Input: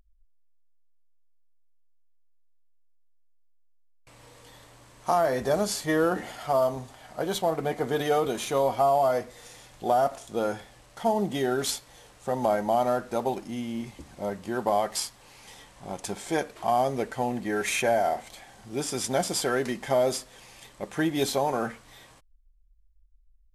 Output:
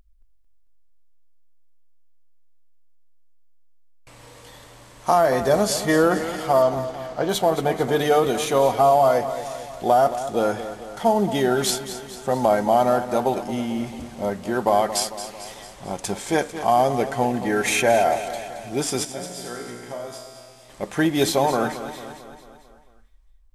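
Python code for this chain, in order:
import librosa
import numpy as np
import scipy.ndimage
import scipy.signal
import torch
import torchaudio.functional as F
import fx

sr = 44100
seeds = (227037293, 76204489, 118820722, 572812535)

y = fx.lowpass(x, sr, hz=6700.0, slope=24, at=(6.62, 7.29))
y = fx.comb_fb(y, sr, f0_hz=60.0, decay_s=1.7, harmonics='all', damping=0.0, mix_pct=90, at=(19.03, 20.68), fade=0.02)
y = fx.echo_feedback(y, sr, ms=223, feedback_pct=56, wet_db=-12.0)
y = F.gain(torch.from_numpy(y), 6.0).numpy()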